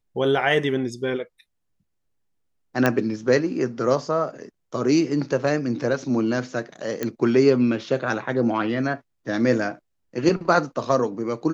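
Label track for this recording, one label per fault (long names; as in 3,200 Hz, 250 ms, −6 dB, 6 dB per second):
2.860000	2.860000	click −6 dBFS
7.030000	7.030000	click −11 dBFS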